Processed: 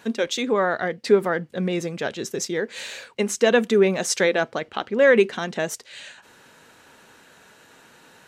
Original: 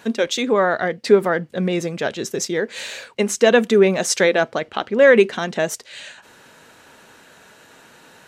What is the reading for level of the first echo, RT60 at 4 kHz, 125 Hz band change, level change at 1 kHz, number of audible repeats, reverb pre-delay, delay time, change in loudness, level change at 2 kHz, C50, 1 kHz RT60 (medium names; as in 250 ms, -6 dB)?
no echo, no reverb, -3.5 dB, -4.0 dB, no echo, no reverb, no echo, -4.0 dB, -3.5 dB, no reverb, no reverb